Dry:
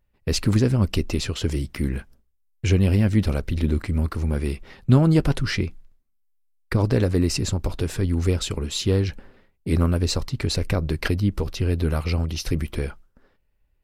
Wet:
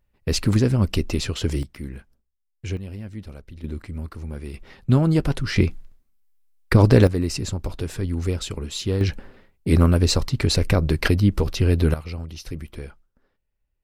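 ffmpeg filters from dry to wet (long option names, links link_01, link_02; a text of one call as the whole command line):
ffmpeg -i in.wav -af "asetnsamples=nb_out_samples=441:pad=0,asendcmd='1.63 volume volume -9dB;2.77 volume volume -16dB;3.64 volume volume -9dB;4.54 volume volume -1.5dB;5.56 volume volume 6.5dB;7.07 volume volume -3dB;9.01 volume volume 4dB;11.94 volume volume -8.5dB',volume=0.5dB" out.wav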